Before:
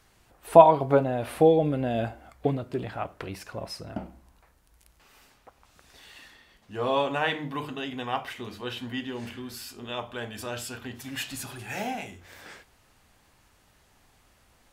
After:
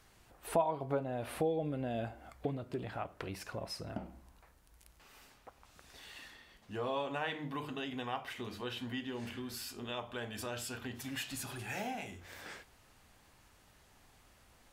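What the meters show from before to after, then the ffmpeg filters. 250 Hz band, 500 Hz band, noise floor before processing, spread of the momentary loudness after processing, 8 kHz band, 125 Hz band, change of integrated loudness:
−9.5 dB, −13.5 dB, −63 dBFS, 18 LU, −4.5 dB, −9.5 dB, −12.5 dB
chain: -af "acompressor=threshold=-38dB:ratio=2,volume=-2dB"

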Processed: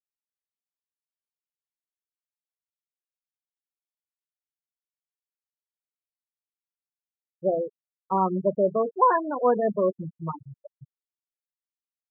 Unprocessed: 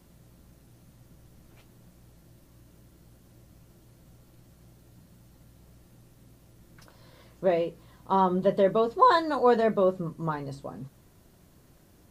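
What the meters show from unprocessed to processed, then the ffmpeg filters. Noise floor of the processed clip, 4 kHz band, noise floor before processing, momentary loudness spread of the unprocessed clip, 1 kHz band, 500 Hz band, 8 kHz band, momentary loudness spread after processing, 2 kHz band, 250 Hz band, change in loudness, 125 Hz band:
below −85 dBFS, below −40 dB, −58 dBFS, 16 LU, −0.5 dB, 0.0 dB, can't be measured, 14 LU, −4.0 dB, −0.5 dB, 0.0 dB, −1.5 dB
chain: -af "afftfilt=real='re*gte(hypot(re,im),0.141)':imag='im*gte(hypot(re,im),0.141)':win_size=1024:overlap=0.75"

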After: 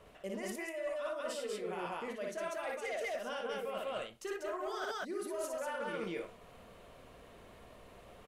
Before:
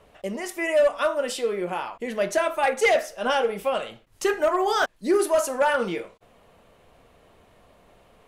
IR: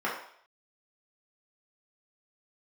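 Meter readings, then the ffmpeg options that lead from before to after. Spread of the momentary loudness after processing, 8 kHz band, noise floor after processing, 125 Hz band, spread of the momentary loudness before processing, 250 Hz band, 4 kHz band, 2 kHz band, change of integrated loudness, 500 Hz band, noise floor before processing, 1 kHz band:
18 LU, −14.0 dB, −57 dBFS, can't be measured, 10 LU, −13.5 dB, −14.0 dB, −15.0 dB, −15.5 dB, −15.0 dB, −58 dBFS, −16.0 dB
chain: -af "bandreject=frequency=830:width=12,aecho=1:1:58.31|192.4:0.794|0.891,areverse,acompressor=threshold=-33dB:ratio=10,areverse,volume=-3.5dB"

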